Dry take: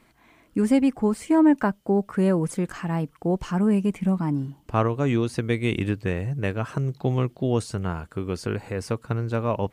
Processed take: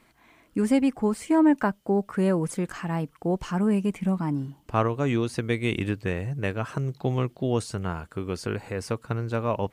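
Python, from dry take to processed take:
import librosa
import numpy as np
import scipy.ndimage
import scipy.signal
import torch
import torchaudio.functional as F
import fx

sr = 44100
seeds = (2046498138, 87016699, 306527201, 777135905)

y = fx.low_shelf(x, sr, hz=460.0, db=-3.0)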